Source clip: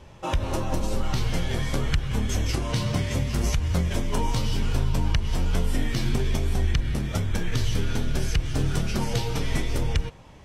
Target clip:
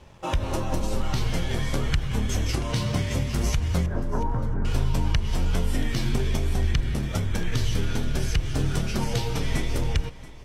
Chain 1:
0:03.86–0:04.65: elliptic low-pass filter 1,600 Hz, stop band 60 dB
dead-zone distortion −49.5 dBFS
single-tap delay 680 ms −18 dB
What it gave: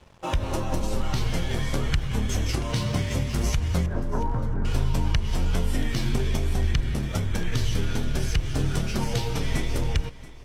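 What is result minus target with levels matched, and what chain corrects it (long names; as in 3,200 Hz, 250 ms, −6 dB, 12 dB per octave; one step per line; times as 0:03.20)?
dead-zone distortion: distortion +7 dB
0:03.86–0:04.65: elliptic low-pass filter 1,600 Hz, stop band 60 dB
dead-zone distortion −57 dBFS
single-tap delay 680 ms −18 dB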